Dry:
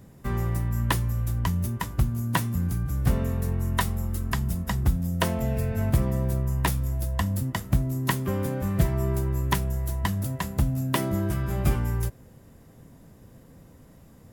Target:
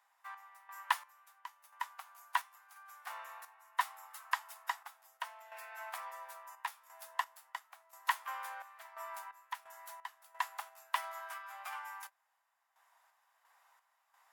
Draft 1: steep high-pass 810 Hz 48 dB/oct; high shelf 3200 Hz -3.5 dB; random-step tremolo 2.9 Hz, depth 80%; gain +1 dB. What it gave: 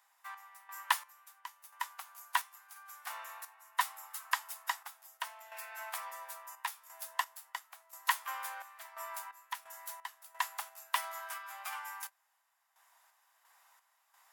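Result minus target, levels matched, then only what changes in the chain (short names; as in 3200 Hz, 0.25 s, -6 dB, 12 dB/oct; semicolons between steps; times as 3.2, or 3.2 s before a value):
8000 Hz band +6.0 dB
change: high shelf 3200 Hz -13 dB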